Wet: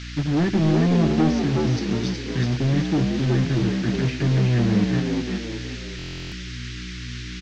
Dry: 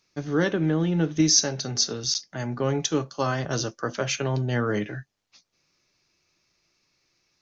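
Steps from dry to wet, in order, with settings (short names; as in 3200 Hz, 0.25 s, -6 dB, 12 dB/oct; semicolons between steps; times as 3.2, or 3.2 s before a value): HPF 46 Hz 12 dB/oct; treble ducked by the level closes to 1300 Hz, closed at -23 dBFS; Chebyshev band-stop 370–1700 Hz, order 4; tone controls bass +5 dB, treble +5 dB; in parallel at -6.5 dB: bit-crush 5-bit; on the sum: hum 60 Hz, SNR 17 dB; soft clip -21.5 dBFS, distortion -8 dB; band noise 1500–6700 Hz -42 dBFS; air absorption 140 m; on a send: frequency-shifting echo 0.371 s, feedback 35%, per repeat +62 Hz, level -4 dB; on the sum: stuck buffer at 5.97, samples 1024, times 14; gain +5 dB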